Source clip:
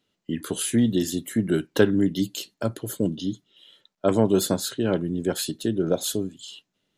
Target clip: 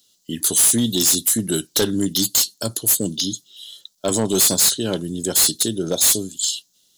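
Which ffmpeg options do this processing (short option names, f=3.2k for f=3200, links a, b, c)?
-af "aexciter=amount=7.1:drive=9.1:freq=3.5k,volume=12.5dB,asoftclip=hard,volume=-12.5dB"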